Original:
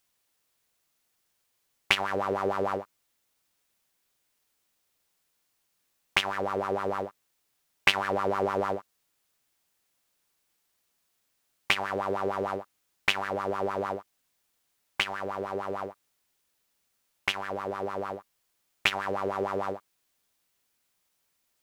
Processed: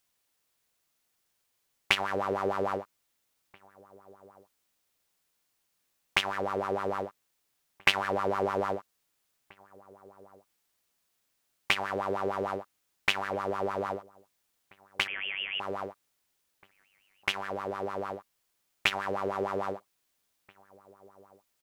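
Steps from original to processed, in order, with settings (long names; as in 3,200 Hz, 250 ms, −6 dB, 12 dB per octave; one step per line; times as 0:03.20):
0:15.07–0:15.60: voice inversion scrambler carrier 3,300 Hz
slap from a distant wall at 280 metres, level −23 dB
level −1.5 dB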